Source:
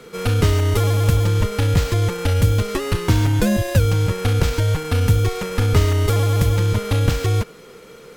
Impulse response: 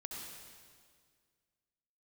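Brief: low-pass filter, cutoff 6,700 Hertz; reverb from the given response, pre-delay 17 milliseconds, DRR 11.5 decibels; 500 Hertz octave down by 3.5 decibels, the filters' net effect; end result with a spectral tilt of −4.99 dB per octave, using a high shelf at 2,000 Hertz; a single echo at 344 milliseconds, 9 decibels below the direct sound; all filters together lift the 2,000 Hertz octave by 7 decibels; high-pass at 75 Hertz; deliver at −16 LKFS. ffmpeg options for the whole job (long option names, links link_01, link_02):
-filter_complex "[0:a]highpass=75,lowpass=6700,equalizer=frequency=500:width_type=o:gain=-4.5,highshelf=frequency=2000:gain=5,equalizer=frequency=2000:width_type=o:gain=6,aecho=1:1:344:0.355,asplit=2[link_01][link_02];[1:a]atrim=start_sample=2205,adelay=17[link_03];[link_02][link_03]afir=irnorm=-1:irlink=0,volume=-10dB[link_04];[link_01][link_04]amix=inputs=2:normalize=0,volume=2.5dB"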